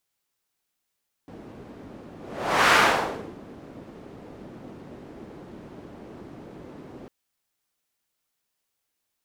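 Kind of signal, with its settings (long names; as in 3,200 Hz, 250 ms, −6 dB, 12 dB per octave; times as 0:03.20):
pass-by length 5.80 s, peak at 0:01.45, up 0.59 s, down 0.68 s, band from 300 Hz, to 1,400 Hz, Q 1.1, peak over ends 26 dB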